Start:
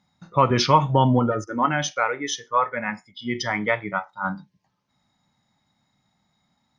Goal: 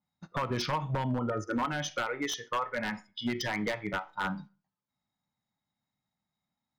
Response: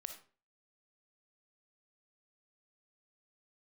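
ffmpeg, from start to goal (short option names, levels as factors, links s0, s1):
-filter_complex "[0:a]agate=range=0.112:threshold=0.00794:ratio=16:detection=peak,acompressor=threshold=0.0398:ratio=8,aeval=exprs='0.0596*(abs(mod(val(0)/0.0596+3,4)-2)-1)':c=same,asplit=2[s0][s1];[1:a]atrim=start_sample=2205,lowpass=4800[s2];[s1][s2]afir=irnorm=-1:irlink=0,volume=0.299[s3];[s0][s3]amix=inputs=2:normalize=0,adynamicequalizer=threshold=0.00501:dfrequency=3500:dqfactor=0.7:tfrequency=3500:tqfactor=0.7:attack=5:release=100:ratio=0.375:range=1.5:mode=cutabove:tftype=highshelf"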